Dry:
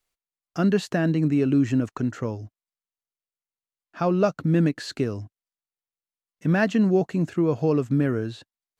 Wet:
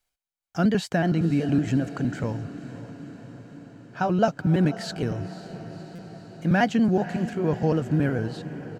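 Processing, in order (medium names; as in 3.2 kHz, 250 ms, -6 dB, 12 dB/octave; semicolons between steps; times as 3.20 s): pitch shift switched off and on +1.5 st, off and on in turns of 93 ms; comb 1.3 ms, depth 35%; echo that smears into a reverb 531 ms, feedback 65%, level -14 dB; buffer glitch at 5.95 s, samples 256, times 5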